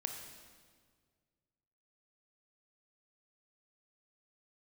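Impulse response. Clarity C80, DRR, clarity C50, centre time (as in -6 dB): 6.5 dB, 4.0 dB, 5.5 dB, 40 ms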